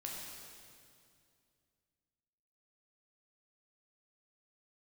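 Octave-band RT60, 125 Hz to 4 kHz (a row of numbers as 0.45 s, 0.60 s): 3.0 s, 2.8 s, 2.5 s, 2.2 s, 2.1 s, 2.1 s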